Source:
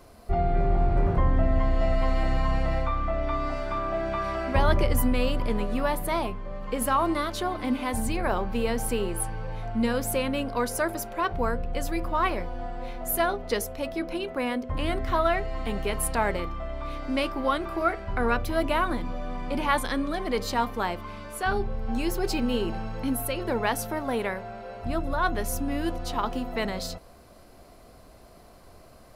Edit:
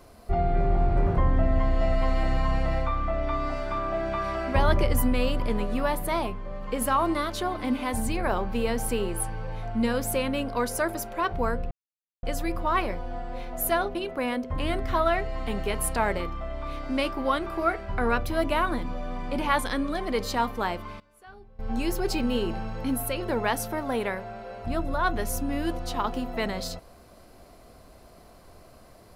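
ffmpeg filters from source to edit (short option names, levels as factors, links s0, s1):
-filter_complex "[0:a]asplit=5[s0][s1][s2][s3][s4];[s0]atrim=end=11.71,asetpts=PTS-STARTPTS,afade=t=out:st=11.706:d=0.004:c=hsin,apad=pad_dur=0.52[s5];[s1]atrim=start=11.71:end=13.432,asetpts=PTS-STARTPTS,afade=t=in:d=0.004:c=hsin[s6];[s2]atrim=start=14.138:end=21.19,asetpts=PTS-STARTPTS,afade=t=out:st=6.782:d=0.27:c=log:silence=0.0794328[s7];[s3]atrim=start=21.19:end=21.78,asetpts=PTS-STARTPTS,volume=0.0794[s8];[s4]atrim=start=21.78,asetpts=PTS-STARTPTS,afade=t=in:d=0.27:c=log:silence=0.0794328[s9];[s5][s6]concat=n=2:v=0:a=1[s10];[s7][s8][s9]concat=n=3:v=0:a=1[s11];[s10][s11]acrossfade=d=0.004:c1=hsin:c2=hsin"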